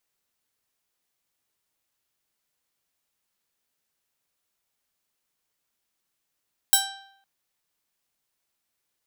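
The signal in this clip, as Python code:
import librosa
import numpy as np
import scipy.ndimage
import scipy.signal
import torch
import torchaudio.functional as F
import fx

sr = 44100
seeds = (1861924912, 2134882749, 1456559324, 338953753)

y = fx.pluck(sr, length_s=0.51, note=79, decay_s=0.75, pick=0.33, brightness='bright')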